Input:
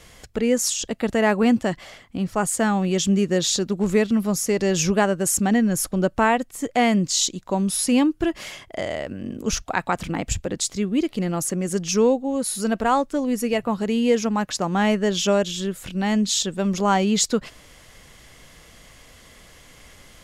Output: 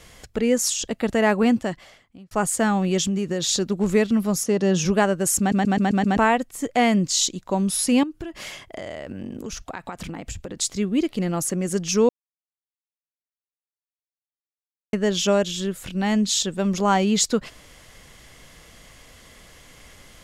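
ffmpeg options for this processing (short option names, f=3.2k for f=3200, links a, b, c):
-filter_complex "[0:a]asettb=1/sr,asplit=3[a][b][c];[a]atrim=end=3.054[d];[b]atrim=start=3.05:end=3.49,asetpts=PTS-STARTPTS,afade=t=in:d=0.004:c=qsin,afade=t=out:st=0.436:d=0.004:c=qsin,acompressor=threshold=-20dB:ratio=6:attack=3.2:release=140:knee=1:detection=peak[e];[c]atrim=start=3.486[f];[d][e]acrossfade=d=0.004:c1=hsin:c2=qsin[g];[g][f]acrossfade=d=0.004:c1=qsin:c2=hsin,asplit=3[h][i][j];[h]afade=t=out:st=4.43:d=0.02[k];[i]highpass=150,equalizer=f=180:t=q:w=4:g=6,equalizer=f=2.2k:t=q:w=4:g=-9,equalizer=f=4.7k:t=q:w=4:g=-6,equalizer=f=7.5k:t=q:w=4:g=-9,lowpass=f=9.4k:w=0.5412,lowpass=f=9.4k:w=1.3066,afade=t=in:st=4.43:d=0.02,afade=t=out:st=4.84:d=0.02[l];[j]afade=t=in:st=4.84:d=0.02[m];[k][l][m]amix=inputs=3:normalize=0,asettb=1/sr,asplit=3[n][o][p];[n]atrim=end=8.034[q];[o]atrim=start=8.03:end=10.57,asetpts=PTS-STARTPTS,afade=t=in:d=0.004:c=qsin,afade=t=out:st=2.536:d=0.004:c=qsin,acompressor=threshold=-28dB:ratio=16:attack=3.2:release=140:knee=1:detection=peak[r];[p]atrim=start=10.566[s];[q][r]acrossfade=d=0.004:c1=hsin:c2=qsin[t];[t][s]acrossfade=d=0.004:c1=qsin:c2=hsin,asplit=10[u][v][w][x][y][z][aa][ab][ac][ad];[u]atrim=end=2.31,asetpts=PTS-STARTPTS,afade=t=out:st=1.4:d=0.91[ae];[v]atrim=start=2.31:end=5.522,asetpts=PTS-STARTPTS,afade=t=in:d=0.004:c=hsin[af];[w]atrim=start=5.388:end=5.522[ag];[x]atrim=start=5.388:end=5.522[ah];[y]atrim=start=5.388:end=5.522[ai];[z]atrim=start=5.388:end=5.522[aj];[aa]atrim=start=5.388:end=5.522[ak];[ab]atrim=start=6.168:end=12.09,asetpts=PTS-STARTPTS,afade=t=out:st=5.918:d=0.004:c=hsin[al];[ac]atrim=start=12.09:end=14.93,asetpts=PTS-STARTPTS,volume=0[am];[ad]atrim=start=14.93,asetpts=PTS-STARTPTS,afade=t=in:d=0.004:c=hsin[an];[ae][af]concat=n=2:v=0:a=1[ao];[ao][ag]acrossfade=d=0.004:c1=hsin:c2=hsin[ap];[ap][ah]acrossfade=d=0.004:c1=hsin:c2=hsin[aq];[aq][ai]acrossfade=d=0.004:c1=hsin:c2=hsin[ar];[ar][aj]acrossfade=d=0.004:c1=hsin:c2=hsin[as];[as][ak]acrossfade=d=0.004:c1=hsin:c2=hsin[at];[al][am][an]concat=n=3:v=0:a=1[au];[at][au]acrossfade=d=0.004:c1=hsin:c2=hsin"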